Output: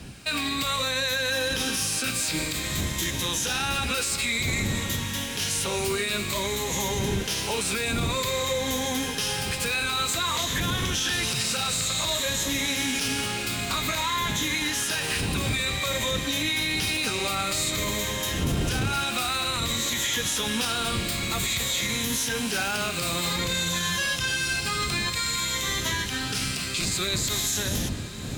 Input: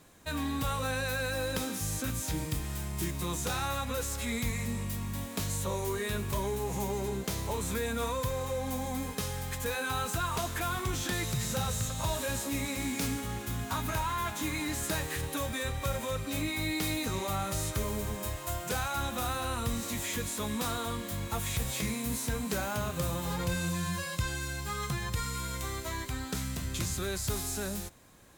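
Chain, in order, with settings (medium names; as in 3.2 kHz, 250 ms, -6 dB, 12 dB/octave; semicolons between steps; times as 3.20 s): drifting ripple filter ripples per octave 1.1, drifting -0.53 Hz, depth 7 dB; wind noise 94 Hz -27 dBFS; frequency weighting D; peak limiter -23 dBFS, peak gain reduction 13 dB; echo that smears into a reverb 1115 ms, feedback 60%, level -15.5 dB; trim +5.5 dB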